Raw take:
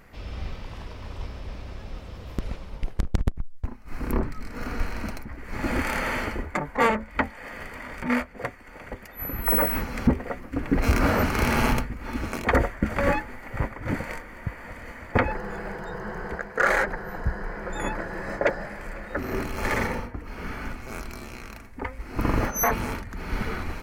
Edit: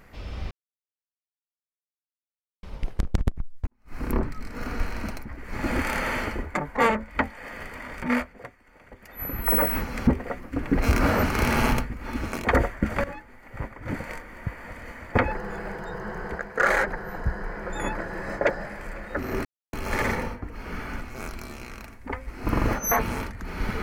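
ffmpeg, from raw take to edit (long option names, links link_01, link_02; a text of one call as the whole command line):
ffmpeg -i in.wav -filter_complex "[0:a]asplit=8[link_01][link_02][link_03][link_04][link_05][link_06][link_07][link_08];[link_01]atrim=end=0.51,asetpts=PTS-STARTPTS,afade=type=out:start_time=0.506:duration=0.004:curve=hsin[link_09];[link_02]atrim=start=0.51:end=2.63,asetpts=PTS-STARTPTS,volume=0[link_10];[link_03]atrim=start=2.63:end=3.67,asetpts=PTS-STARTPTS,afade=type=in:duration=0.004:curve=hsin,afade=type=out:start_time=1.036:duration=0.004:curve=hsin[link_11];[link_04]atrim=start=3.67:end=8.48,asetpts=PTS-STARTPTS,afade=type=in:duration=0.33:curve=qua,afade=type=out:start_time=4.6:duration=0.21:curve=qua:silence=0.298538[link_12];[link_05]atrim=start=8.48:end=8.91,asetpts=PTS-STARTPTS,volume=-10.5dB[link_13];[link_06]atrim=start=8.91:end=13.04,asetpts=PTS-STARTPTS,afade=type=in:duration=0.21:curve=qua:silence=0.298538,afade=type=out:start_time=4.126:duration=0.004:curve=hsin:silence=0.133352[link_14];[link_07]atrim=start=13.04:end=19.45,asetpts=PTS-STARTPTS,afade=type=in:duration=1.37:silence=0.133352,afade=type=out:start_time=6.406:duration=0.004:curve=hsin,apad=pad_dur=0.28[link_15];[link_08]atrim=start=19.45,asetpts=PTS-STARTPTS,afade=type=in:duration=0.004:curve=hsin[link_16];[link_09][link_10][link_11][link_12][link_13][link_14][link_15][link_16]concat=n=8:v=0:a=1" out.wav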